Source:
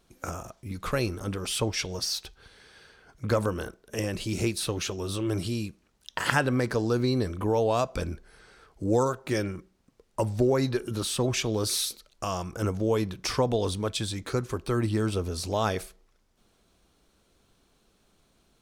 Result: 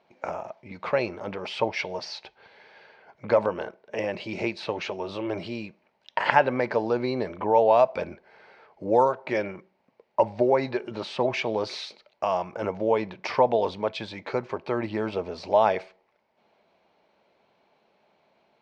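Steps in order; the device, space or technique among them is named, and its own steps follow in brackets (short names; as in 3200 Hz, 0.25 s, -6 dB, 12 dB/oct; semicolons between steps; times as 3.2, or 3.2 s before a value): kitchen radio (speaker cabinet 220–4000 Hz, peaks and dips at 290 Hz -6 dB, 610 Hz +9 dB, 880 Hz +10 dB, 1300 Hz -4 dB, 2200 Hz +6 dB, 3500 Hz -6 dB); gain +1 dB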